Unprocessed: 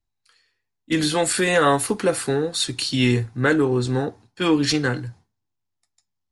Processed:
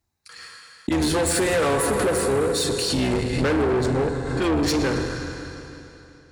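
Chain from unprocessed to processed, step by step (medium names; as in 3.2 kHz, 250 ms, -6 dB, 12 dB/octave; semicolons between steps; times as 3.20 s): octave divider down 2 oct, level -1 dB; expander -49 dBFS; on a send at -6 dB: reverberation RT60 2.9 s, pre-delay 46 ms; on the sum: dynamic bell 430 Hz, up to +6 dB, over -31 dBFS, Q 1.5; in parallel at +1.5 dB: peak limiter -10 dBFS, peak gain reduction 8 dB; on the sum: peaking EQ 3.1 kHz -6.5 dB 0.6 oct; saturation -14 dBFS, distortion -8 dB; high-pass 59 Hz; hum notches 60/120/180/240 Hz; swell ahead of each attack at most 40 dB/s; trim -4 dB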